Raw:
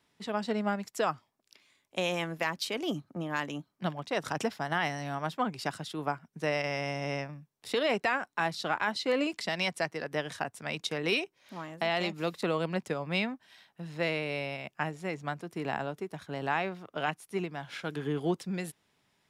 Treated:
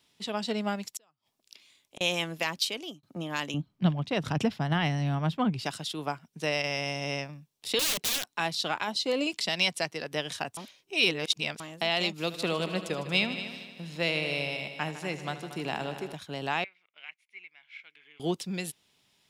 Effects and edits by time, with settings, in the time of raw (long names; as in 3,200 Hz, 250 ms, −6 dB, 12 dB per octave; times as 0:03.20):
0:00.85–0:02.01: gate with flip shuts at −31 dBFS, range −38 dB
0:02.57–0:03.03: fade out
0:03.54–0:05.64: bass and treble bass +14 dB, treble −11 dB
0:07.79–0:08.33: wrap-around overflow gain 28.5 dB
0:08.83–0:09.27: drawn EQ curve 860 Hz 0 dB, 1,700 Hz −7 dB, 5,400 Hz −1 dB
0:10.57–0:11.60: reverse
0:12.17–0:16.13: echo machine with several playback heads 77 ms, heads all three, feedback 48%, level −15 dB
0:16.64–0:18.20: resonant band-pass 2,200 Hz, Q 9.9
whole clip: high shelf with overshoot 2,300 Hz +6.5 dB, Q 1.5